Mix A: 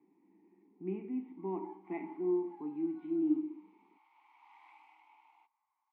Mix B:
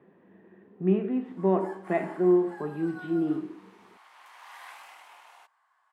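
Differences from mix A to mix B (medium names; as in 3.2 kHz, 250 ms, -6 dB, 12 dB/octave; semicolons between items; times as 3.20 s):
speech: add peaking EQ 2.1 kHz -5.5 dB 0.25 oct; master: remove vowel filter u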